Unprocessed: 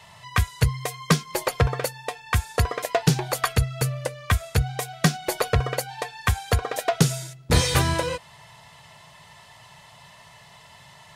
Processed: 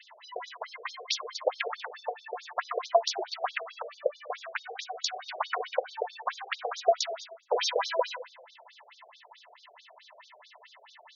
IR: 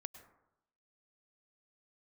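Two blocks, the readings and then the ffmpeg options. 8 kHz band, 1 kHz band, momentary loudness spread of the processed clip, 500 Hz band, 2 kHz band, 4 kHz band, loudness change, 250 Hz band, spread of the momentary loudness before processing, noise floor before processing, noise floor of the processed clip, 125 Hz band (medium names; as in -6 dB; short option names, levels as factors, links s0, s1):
-12.0 dB, -3.5 dB, 13 LU, -2.5 dB, -8.0 dB, -4.5 dB, -8.0 dB, under -25 dB, 8 LU, -50 dBFS, -58 dBFS, under -40 dB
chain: -filter_complex "[0:a]asplit=2[s0][s1];[s1]highshelf=f=7400:g=-11.5[s2];[1:a]atrim=start_sample=2205[s3];[s2][s3]afir=irnorm=-1:irlink=0,volume=3.55[s4];[s0][s4]amix=inputs=2:normalize=0,afftfilt=real='re*between(b*sr/1024,510*pow(4900/510,0.5+0.5*sin(2*PI*4.6*pts/sr))/1.41,510*pow(4900/510,0.5+0.5*sin(2*PI*4.6*pts/sr))*1.41)':imag='im*between(b*sr/1024,510*pow(4900/510,0.5+0.5*sin(2*PI*4.6*pts/sr))/1.41,510*pow(4900/510,0.5+0.5*sin(2*PI*4.6*pts/sr))*1.41)':win_size=1024:overlap=0.75,volume=0.422"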